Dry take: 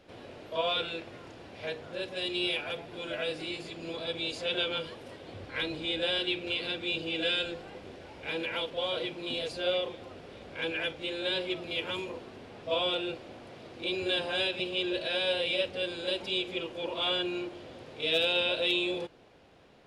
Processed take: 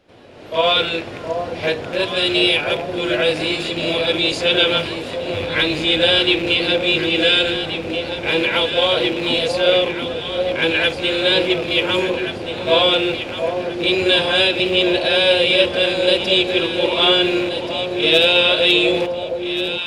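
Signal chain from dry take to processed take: rattle on loud lows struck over -46 dBFS, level -34 dBFS; level rider gain up to 16 dB; echo whose repeats swap between lows and highs 715 ms, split 900 Hz, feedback 60%, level -5 dB

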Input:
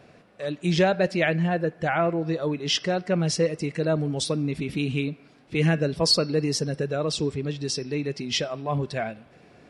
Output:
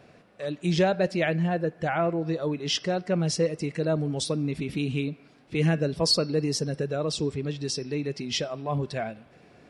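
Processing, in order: dynamic bell 2 kHz, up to -3 dB, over -37 dBFS, Q 0.82; trim -1.5 dB

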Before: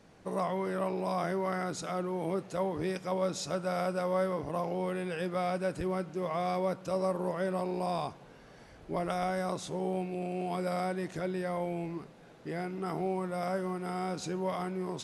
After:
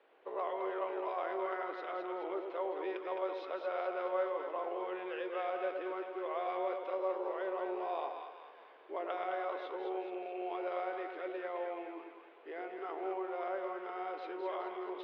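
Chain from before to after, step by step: elliptic band-pass 380–3200 Hz, stop band 40 dB; on a send: two-band feedback delay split 900 Hz, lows 104 ms, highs 212 ms, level -5 dB; on the sum: trim -4.5 dB

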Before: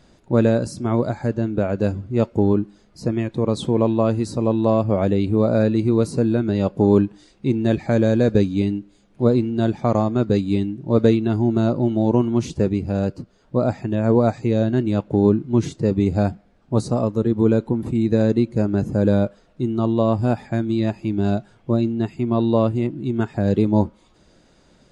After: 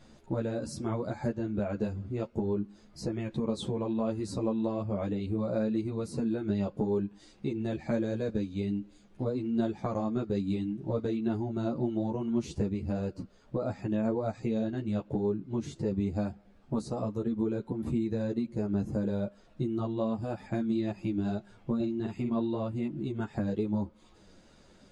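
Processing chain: 21.75–22.35 s: doubling 49 ms -4 dB; compression 6:1, threshold -25 dBFS, peak gain reduction 14.5 dB; three-phase chorus

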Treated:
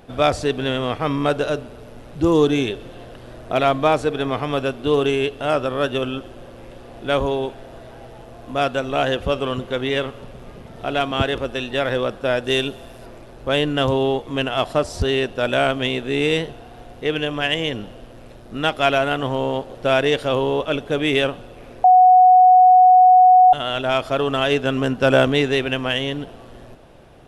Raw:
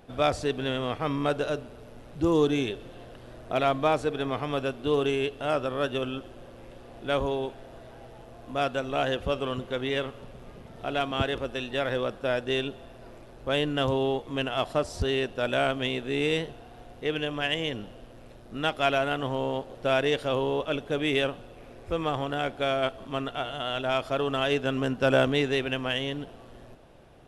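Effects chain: 12.44–13.06 s: treble shelf 5.6 kHz +11 dB; 21.84–23.53 s: bleep 737 Hz -14 dBFS; trim +7 dB

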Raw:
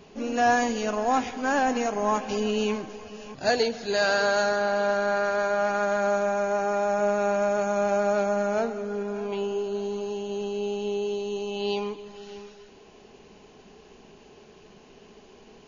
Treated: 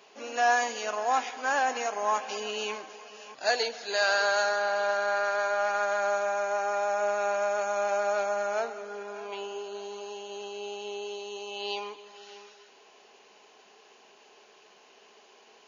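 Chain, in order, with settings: high-pass 670 Hz 12 dB/octave

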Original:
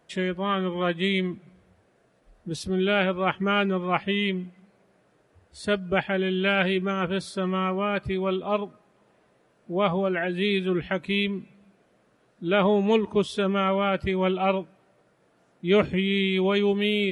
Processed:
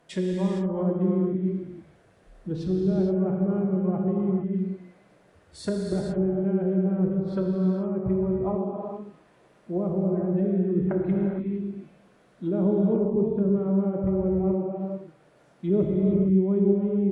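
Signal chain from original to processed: low-pass that closes with the level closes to 330 Hz, closed at -23 dBFS; dynamic bell 2.8 kHz, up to -6 dB, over -58 dBFS, Q 1.1; gated-style reverb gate 490 ms flat, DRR -1 dB; trim +1 dB

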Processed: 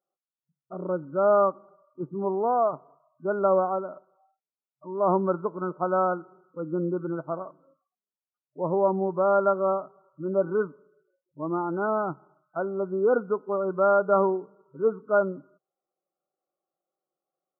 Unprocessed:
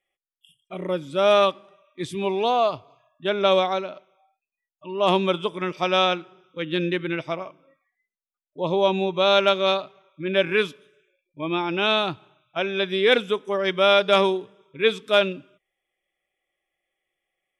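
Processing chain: FFT band-pass 130–1500 Hz; trim -2.5 dB

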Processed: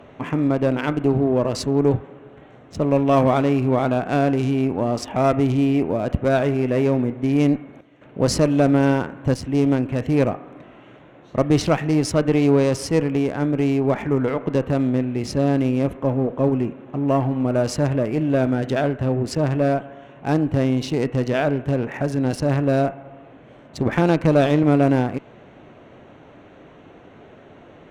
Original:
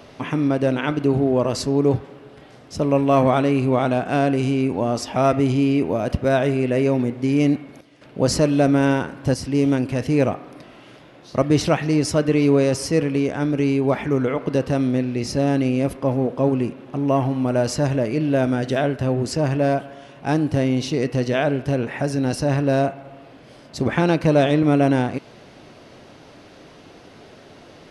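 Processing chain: local Wiener filter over 9 samples; Chebyshev shaper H 4 -23 dB, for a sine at -5 dBFS

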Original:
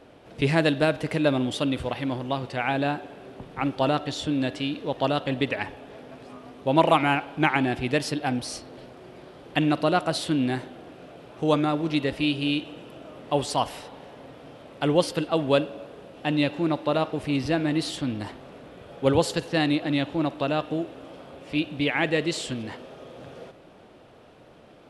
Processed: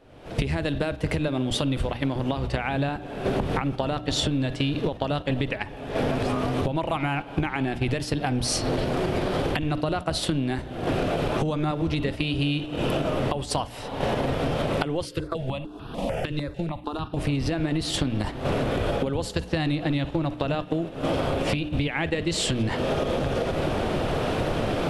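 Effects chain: octave divider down 1 oct, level -3 dB; recorder AGC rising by 50 dB/s; gate -23 dBFS, range -9 dB; bass shelf 71 Hz +9 dB; hum notches 60/120/180/240/300 Hz; compression 10:1, threshold -25 dBFS, peak gain reduction 16.5 dB; 15.05–17.17 s: stepped phaser 6.7 Hz 210–2100 Hz; trim +3 dB

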